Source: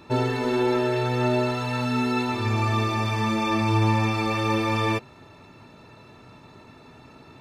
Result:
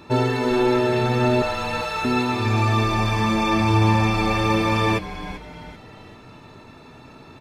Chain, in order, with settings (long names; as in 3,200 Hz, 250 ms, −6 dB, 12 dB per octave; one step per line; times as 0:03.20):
0:01.42–0:02.05: Butterworth high-pass 460 Hz 72 dB per octave
on a send: echo with shifted repeats 389 ms, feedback 42%, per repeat −140 Hz, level −13 dB
on the sum: level +3.5 dB